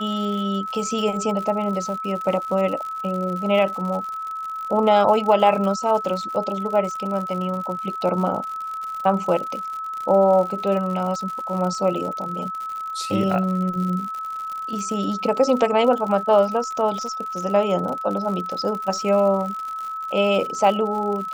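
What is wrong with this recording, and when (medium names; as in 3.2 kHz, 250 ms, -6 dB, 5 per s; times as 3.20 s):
crackle 92 per s -29 dBFS
whine 1.3 kHz -27 dBFS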